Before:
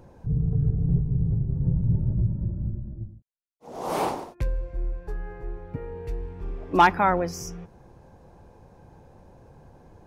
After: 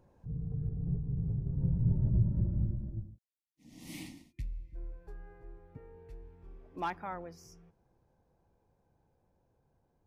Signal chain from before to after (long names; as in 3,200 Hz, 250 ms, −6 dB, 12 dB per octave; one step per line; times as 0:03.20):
source passing by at 0:02.56, 7 m/s, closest 4.3 metres
gain on a spectral selection 0:03.30–0:04.75, 340–1,800 Hz −26 dB
level −2 dB